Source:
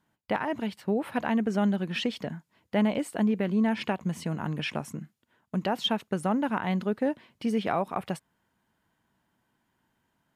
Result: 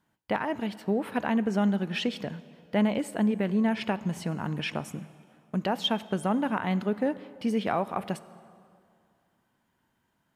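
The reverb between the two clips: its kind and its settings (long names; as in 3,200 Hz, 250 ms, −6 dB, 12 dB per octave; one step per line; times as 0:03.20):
dense smooth reverb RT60 2.4 s, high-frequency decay 0.7×, DRR 15.5 dB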